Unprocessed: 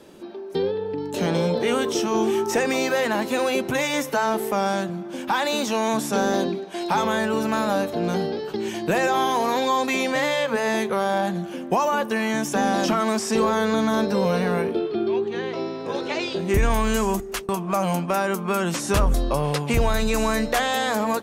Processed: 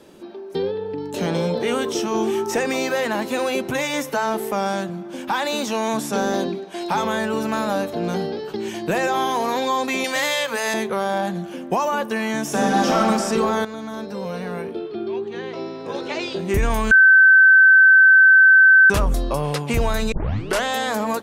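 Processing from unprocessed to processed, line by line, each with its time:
10.04–10.74 tilt +3 dB/oct
12.42–12.98 reverb throw, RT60 2.4 s, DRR -1.5 dB
13.65–16.26 fade in, from -12 dB
16.91–18.9 bleep 1540 Hz -7.5 dBFS
20.12 tape start 0.52 s

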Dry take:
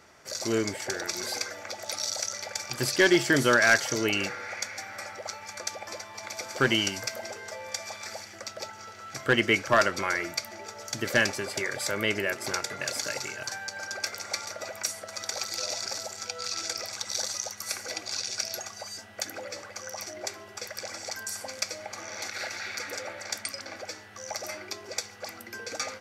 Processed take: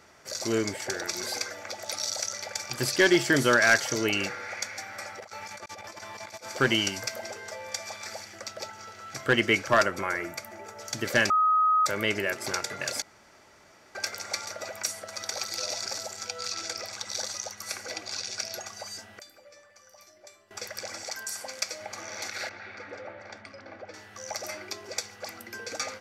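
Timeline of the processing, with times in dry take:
5.2–6.49 negative-ratio compressor -42 dBFS, ratio -0.5
9.83–10.79 bell 4500 Hz -10 dB 1.4 oct
11.3–11.86 bleep 1260 Hz -19 dBFS
13.02–13.95 room tone
15.14–15.8 notch 7200 Hz
16.52–18.67 high shelf 6600 Hz -6 dB
19.19–20.51 resonator 590 Hz, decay 0.37 s, mix 90%
21.03–21.81 low shelf 200 Hz -11 dB
22.49–23.94 tape spacing loss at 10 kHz 35 dB

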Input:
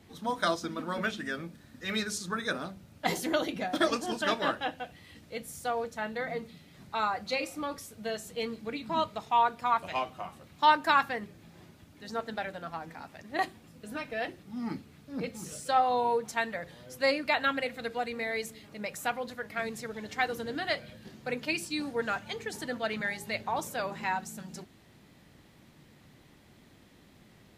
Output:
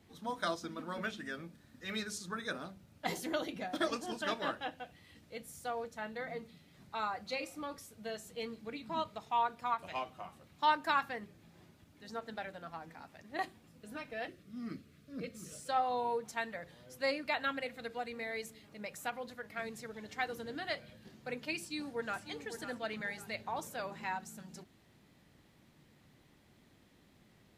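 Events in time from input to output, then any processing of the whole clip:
14.27–15.54 Butterworth band-stop 860 Hz, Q 2.2
21.58–22.2 echo throw 0.55 s, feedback 35%, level -9.5 dB
whole clip: ending taper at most 430 dB/s; gain -7 dB

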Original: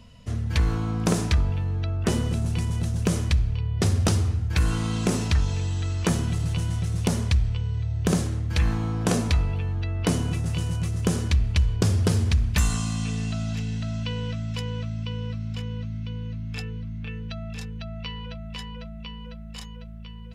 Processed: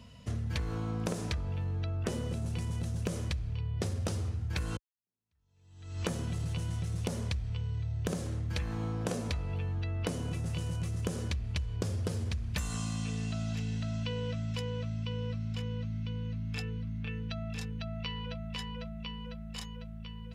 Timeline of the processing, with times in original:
4.77–6.07 fade in exponential
whole clip: HPF 54 Hz; dynamic EQ 530 Hz, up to +7 dB, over -47 dBFS, Q 3.5; compressor, threshold -29 dBFS; gain -2 dB

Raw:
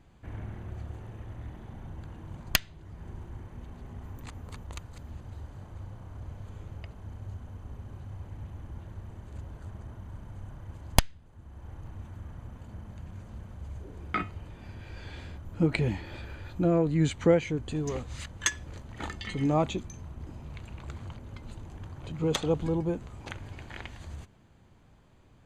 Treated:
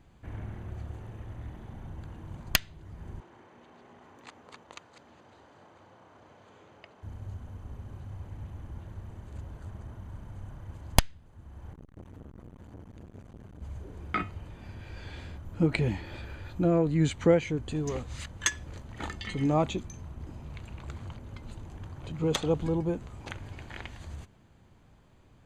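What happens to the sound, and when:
3.2–7.03 BPF 360–5900 Hz
11.73–13.62 core saturation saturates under 390 Hz

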